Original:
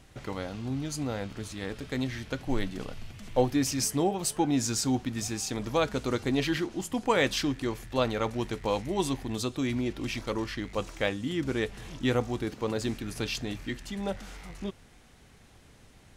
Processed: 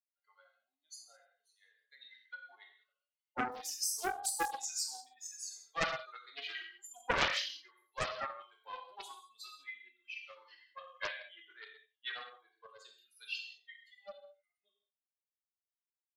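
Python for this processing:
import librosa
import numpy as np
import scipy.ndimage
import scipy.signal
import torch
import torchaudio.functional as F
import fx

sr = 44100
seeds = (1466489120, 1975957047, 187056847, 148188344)

y = fx.bin_expand(x, sr, power=3.0)
y = scipy.signal.sosfilt(scipy.signal.butter(6, 670.0, 'highpass', fs=sr, output='sos'), y)
y = fx.peak_eq(y, sr, hz=5900.0, db=-3.0, octaves=1.4)
y = fx.notch(y, sr, hz=940.0, q=17.0)
y = y + 10.0 ** (-17.5 / 20.0) * np.pad(y, (int(88 * sr / 1000.0), 0))[:len(y)]
y = fx.rev_gated(y, sr, seeds[0], gate_ms=230, shape='falling', drr_db=-0.5)
y = fx.doppler_dist(y, sr, depth_ms=0.61)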